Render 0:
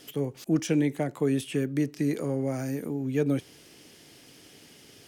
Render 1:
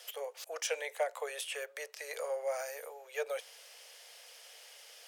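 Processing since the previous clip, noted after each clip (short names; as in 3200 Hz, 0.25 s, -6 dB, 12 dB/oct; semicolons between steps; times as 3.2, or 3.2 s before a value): steep high-pass 490 Hz 72 dB/oct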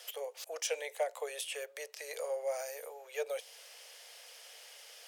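dynamic EQ 1400 Hz, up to -7 dB, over -54 dBFS, Q 1.1; gain +1 dB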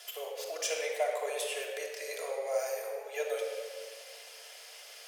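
shoebox room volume 3300 m³, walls mixed, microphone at 3.1 m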